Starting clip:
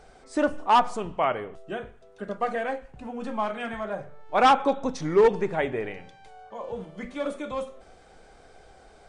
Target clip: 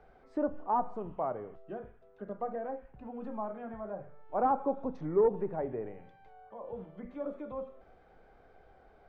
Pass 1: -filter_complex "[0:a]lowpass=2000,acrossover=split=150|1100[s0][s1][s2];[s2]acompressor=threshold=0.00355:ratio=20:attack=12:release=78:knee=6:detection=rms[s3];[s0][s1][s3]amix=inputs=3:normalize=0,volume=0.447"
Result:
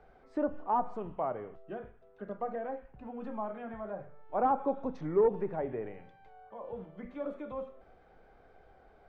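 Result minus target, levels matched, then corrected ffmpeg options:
compression: peak gain reduction -7.5 dB
-filter_complex "[0:a]lowpass=2000,acrossover=split=150|1100[s0][s1][s2];[s2]acompressor=threshold=0.00141:ratio=20:attack=12:release=78:knee=6:detection=rms[s3];[s0][s1][s3]amix=inputs=3:normalize=0,volume=0.447"

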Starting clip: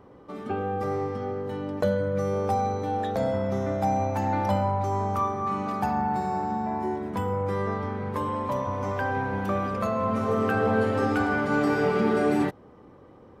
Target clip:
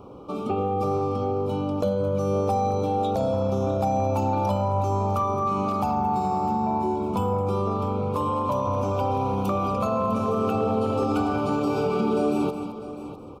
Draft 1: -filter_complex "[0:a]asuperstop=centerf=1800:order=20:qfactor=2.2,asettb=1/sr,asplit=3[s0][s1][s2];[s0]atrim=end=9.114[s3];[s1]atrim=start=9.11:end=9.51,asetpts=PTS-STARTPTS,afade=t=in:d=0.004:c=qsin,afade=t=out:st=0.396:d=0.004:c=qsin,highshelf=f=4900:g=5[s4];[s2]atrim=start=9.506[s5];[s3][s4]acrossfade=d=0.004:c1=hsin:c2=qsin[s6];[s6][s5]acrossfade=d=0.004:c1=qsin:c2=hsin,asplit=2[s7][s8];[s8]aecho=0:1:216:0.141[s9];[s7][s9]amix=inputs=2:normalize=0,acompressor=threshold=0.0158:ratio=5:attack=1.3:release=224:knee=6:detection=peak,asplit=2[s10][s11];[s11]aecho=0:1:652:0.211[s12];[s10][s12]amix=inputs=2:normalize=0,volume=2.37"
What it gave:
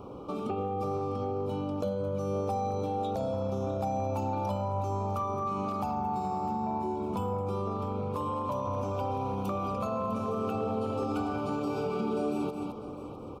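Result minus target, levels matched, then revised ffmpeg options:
compression: peak gain reduction +7.5 dB
-filter_complex "[0:a]asuperstop=centerf=1800:order=20:qfactor=2.2,asettb=1/sr,asplit=3[s0][s1][s2];[s0]atrim=end=9.114[s3];[s1]atrim=start=9.11:end=9.51,asetpts=PTS-STARTPTS,afade=t=in:d=0.004:c=qsin,afade=t=out:st=0.396:d=0.004:c=qsin,highshelf=f=4900:g=5[s4];[s2]atrim=start=9.506[s5];[s3][s4]acrossfade=d=0.004:c1=hsin:c2=qsin[s6];[s6][s5]acrossfade=d=0.004:c1=qsin:c2=hsin,asplit=2[s7][s8];[s8]aecho=0:1:216:0.141[s9];[s7][s9]amix=inputs=2:normalize=0,acompressor=threshold=0.0473:ratio=5:attack=1.3:release=224:knee=6:detection=peak,asplit=2[s10][s11];[s11]aecho=0:1:652:0.211[s12];[s10][s12]amix=inputs=2:normalize=0,volume=2.37"

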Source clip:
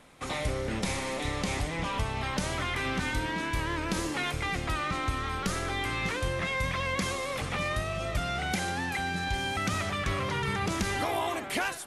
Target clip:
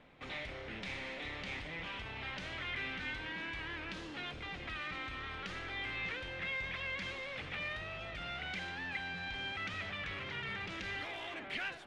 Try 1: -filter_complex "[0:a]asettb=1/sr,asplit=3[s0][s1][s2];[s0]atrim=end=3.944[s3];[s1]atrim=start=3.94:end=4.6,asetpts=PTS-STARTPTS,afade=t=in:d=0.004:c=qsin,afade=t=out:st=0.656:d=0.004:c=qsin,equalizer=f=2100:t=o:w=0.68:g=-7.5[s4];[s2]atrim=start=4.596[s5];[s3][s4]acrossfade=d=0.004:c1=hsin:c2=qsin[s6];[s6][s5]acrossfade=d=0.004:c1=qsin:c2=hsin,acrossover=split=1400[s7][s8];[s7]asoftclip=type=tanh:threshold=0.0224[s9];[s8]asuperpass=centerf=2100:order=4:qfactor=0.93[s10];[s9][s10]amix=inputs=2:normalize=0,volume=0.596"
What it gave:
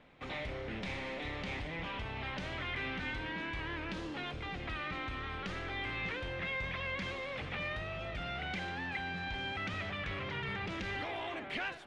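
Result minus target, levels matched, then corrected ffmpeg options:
saturation: distortion -4 dB
-filter_complex "[0:a]asettb=1/sr,asplit=3[s0][s1][s2];[s0]atrim=end=3.944[s3];[s1]atrim=start=3.94:end=4.6,asetpts=PTS-STARTPTS,afade=t=in:d=0.004:c=qsin,afade=t=out:st=0.656:d=0.004:c=qsin,equalizer=f=2100:t=o:w=0.68:g=-7.5[s4];[s2]atrim=start=4.596[s5];[s3][s4]acrossfade=d=0.004:c1=hsin:c2=qsin[s6];[s6][s5]acrossfade=d=0.004:c1=qsin:c2=hsin,acrossover=split=1400[s7][s8];[s7]asoftclip=type=tanh:threshold=0.00891[s9];[s8]asuperpass=centerf=2100:order=4:qfactor=0.93[s10];[s9][s10]amix=inputs=2:normalize=0,volume=0.596"

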